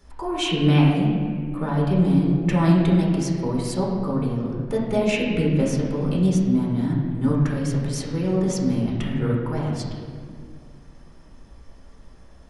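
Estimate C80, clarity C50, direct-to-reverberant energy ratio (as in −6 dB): 3.0 dB, 1.0 dB, −4.5 dB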